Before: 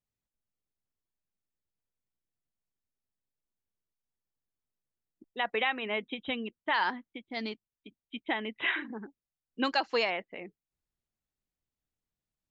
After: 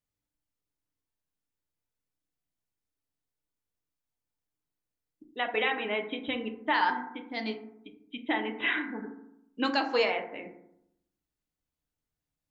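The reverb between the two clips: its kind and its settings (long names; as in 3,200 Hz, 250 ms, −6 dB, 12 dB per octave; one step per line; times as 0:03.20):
feedback delay network reverb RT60 0.78 s, low-frequency decay 1.25×, high-frequency decay 0.35×, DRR 3.5 dB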